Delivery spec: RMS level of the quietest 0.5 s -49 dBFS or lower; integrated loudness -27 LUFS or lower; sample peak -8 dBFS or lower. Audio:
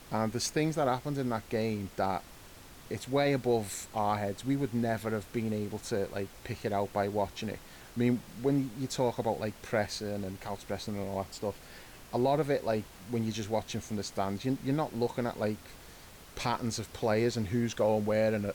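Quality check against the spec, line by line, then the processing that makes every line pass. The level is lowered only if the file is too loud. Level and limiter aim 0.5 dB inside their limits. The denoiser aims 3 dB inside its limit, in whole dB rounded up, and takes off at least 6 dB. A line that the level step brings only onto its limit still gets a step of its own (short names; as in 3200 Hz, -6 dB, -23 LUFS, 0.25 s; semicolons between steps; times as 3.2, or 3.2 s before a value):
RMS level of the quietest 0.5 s -51 dBFS: OK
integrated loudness -32.5 LUFS: OK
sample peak -17.5 dBFS: OK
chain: none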